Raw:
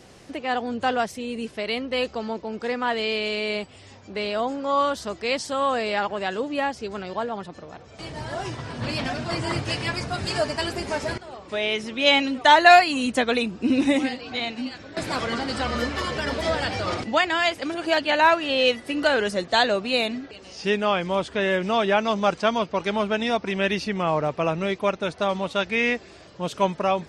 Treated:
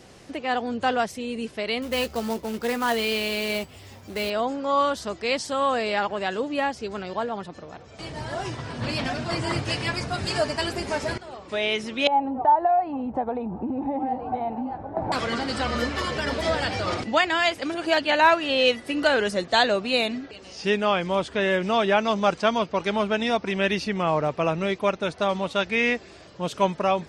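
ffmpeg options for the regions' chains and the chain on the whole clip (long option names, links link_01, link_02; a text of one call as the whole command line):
ffmpeg -i in.wav -filter_complex "[0:a]asettb=1/sr,asplit=3[link_01][link_02][link_03];[link_01]atrim=end=1.824[link_04];[link_02]atrim=start=1.82:end=4.3,asetpts=PTS-STARTPTS,afade=type=in:duration=0.004:curve=qsin,afade=type=out:start_time=2.476:duration=0.004:curve=qsin,lowshelf=frequency=110:gain=6.5,acrusher=bits=3:mode=log:mix=0:aa=0.000001,asplit=2[link_05][link_06];[link_06]adelay=13,volume=-10.5dB[link_07];[link_05][link_07]amix=inputs=2:normalize=0,atrim=end_sample=109368[link_08];[link_03]atrim=start=4.296[link_09];[link_04][link_08]acrossfade=duration=0.004:curve1=hsin:curve2=qsin[link_10];[link_10][link_09]acrossfade=duration=0.004:curve1=qsin:curve2=hsin,asettb=1/sr,asplit=3[link_11][link_12][link_13];[link_11]atrim=end=12.074[link_14];[link_12]atrim=start=12.07:end=15.12,asetpts=PTS-STARTPTS,afade=type=in:duration=0.004:curve=qsin,afade=type=out:start_time=3.046:duration=0.004:curve=qsin,lowshelf=frequency=180:gain=8,acompressor=threshold=-27dB:ratio=6:attack=3.2:release=140:knee=1:detection=peak,lowpass=frequency=830:width_type=q:width=8.8[link_15];[link_13]atrim=start=15.116[link_16];[link_14][link_15]acrossfade=duration=0.004:curve1=hsin:curve2=qsin[link_17];[link_17][link_16]acrossfade=duration=0.004:curve1=qsin:curve2=hsin" out.wav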